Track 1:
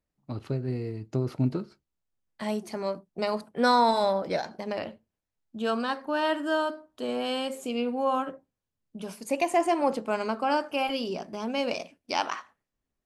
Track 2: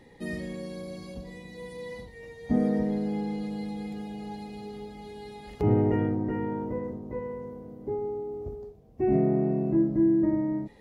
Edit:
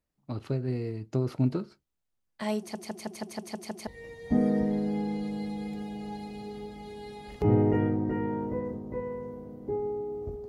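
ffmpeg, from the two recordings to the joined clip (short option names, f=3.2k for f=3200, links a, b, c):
-filter_complex "[0:a]apad=whole_dur=10.48,atrim=end=10.48,asplit=8[a][b][c][d][e][f][g][h];[a]atrim=end=2.752[i];[b]atrim=start=2.588:end=2.752[j];[c]atrim=start=2.588:end=2.752[k];[d]atrim=start=2.588:end=2.752[l];[e]atrim=start=2.588:end=2.752[m];[f]atrim=start=2.588:end=2.752[n];[g]atrim=start=2.588:end=2.752[o];[h]atrim=start=2.588:end=2.752[p];[1:a]atrim=start=2.058:end=8.67[q];[i][j]acrossfade=d=0.004:c1=hsin:c2=hsin[r];[r][k]acrossfade=d=0.004:c1=hsin:c2=hsin[s];[s][l]acrossfade=d=0.004:c1=hsin:c2=hsin[t];[t][m]acrossfade=d=0.004:c1=hsin:c2=hsin[u];[u][n]acrossfade=d=0.004:c1=hsin:c2=hsin[v];[v][o]acrossfade=d=0.004:c1=hsin:c2=hsin[w];[w][p]acrossfade=d=0.004:c1=hsin:c2=hsin[x];[x][q]acrossfade=d=0.004:c1=hsin:c2=hsin"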